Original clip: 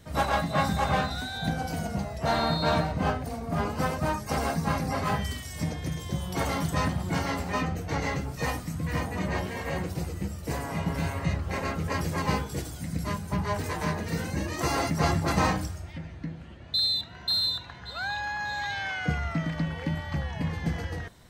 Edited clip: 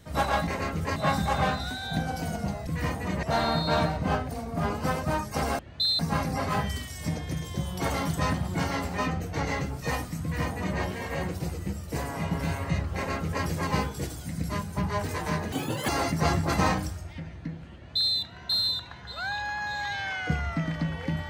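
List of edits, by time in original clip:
0:08.78–0:09.34: duplicate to 0:02.18
0:11.50–0:11.99: duplicate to 0:00.47
0:14.07–0:14.67: play speed 164%
0:16.53–0:16.93: duplicate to 0:04.54

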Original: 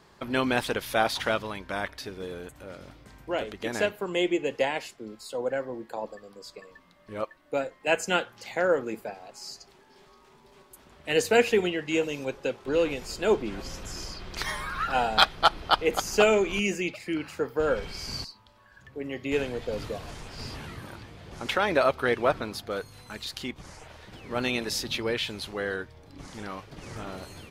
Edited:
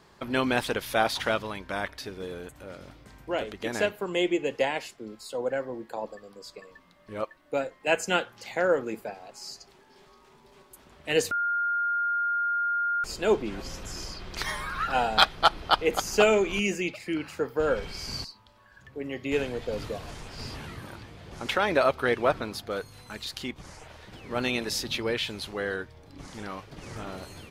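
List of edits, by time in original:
0:11.31–0:13.04: beep over 1,410 Hz −24 dBFS

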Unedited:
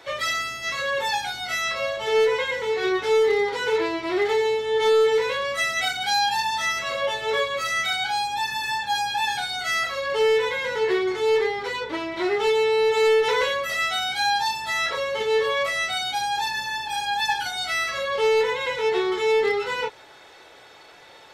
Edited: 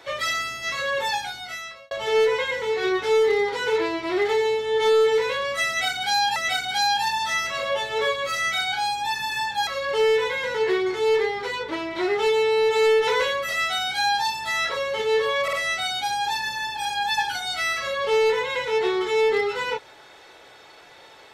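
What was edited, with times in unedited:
0:01.07–0:01.91: fade out linear
0:05.68–0:06.36: repeat, 2 plays
0:08.99–0:09.88: remove
0:15.64: stutter 0.05 s, 3 plays

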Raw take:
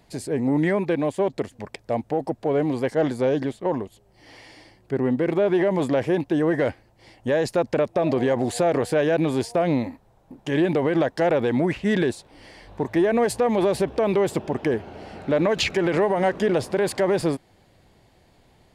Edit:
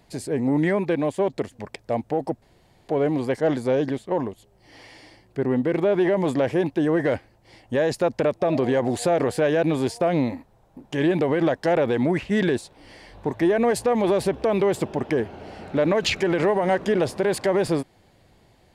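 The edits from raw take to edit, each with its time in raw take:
0:02.42: splice in room tone 0.46 s

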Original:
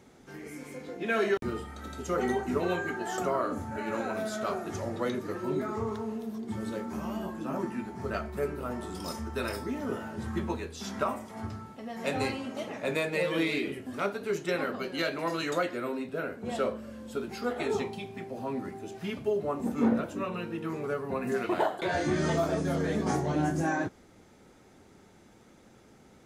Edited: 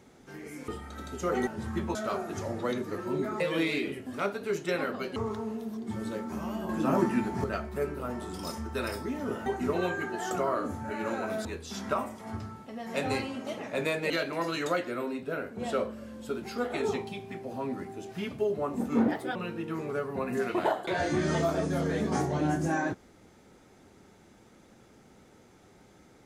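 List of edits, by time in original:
0:00.68–0:01.54: remove
0:02.33–0:04.32: swap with 0:10.07–0:10.55
0:07.30–0:08.05: clip gain +7.5 dB
0:13.20–0:14.96: move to 0:05.77
0:19.94–0:20.30: play speed 131%

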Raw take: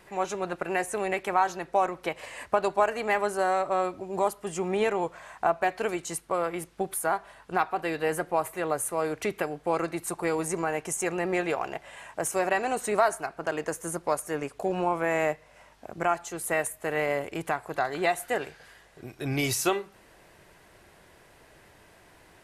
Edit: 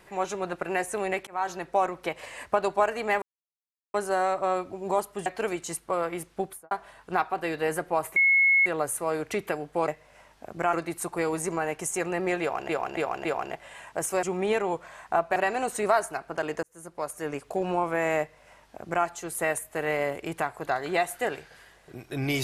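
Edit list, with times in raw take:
0:01.27–0:01.53: fade in
0:03.22: splice in silence 0.72 s
0:04.54–0:05.67: move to 0:12.45
0:06.82–0:07.12: fade out and dull
0:08.57: insert tone 2,180 Hz −17 dBFS 0.50 s
0:11.47–0:11.75: repeat, 4 plays
0:13.72–0:14.47: fade in
0:15.29–0:16.14: duplicate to 0:09.79

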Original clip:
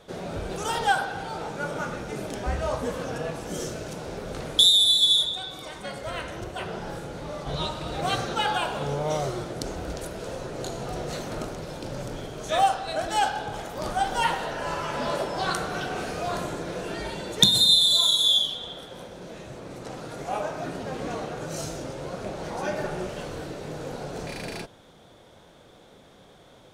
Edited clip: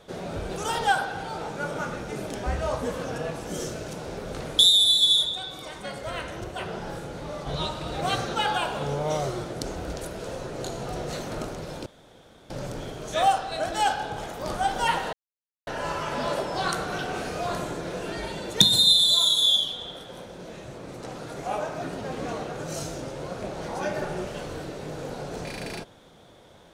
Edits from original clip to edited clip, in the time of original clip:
0:11.86: splice in room tone 0.64 s
0:14.49: splice in silence 0.54 s

